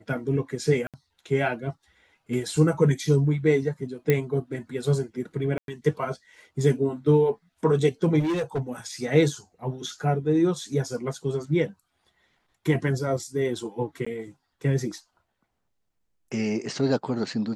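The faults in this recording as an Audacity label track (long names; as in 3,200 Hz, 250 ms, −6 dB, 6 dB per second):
0.870000	0.940000	drop-out 67 ms
4.100000	4.100000	click −9 dBFS
5.580000	5.680000	drop-out 102 ms
8.190000	8.600000	clipping −22.5 dBFS
10.640000	10.640000	drop-out 2.3 ms
14.050000	14.060000	drop-out 15 ms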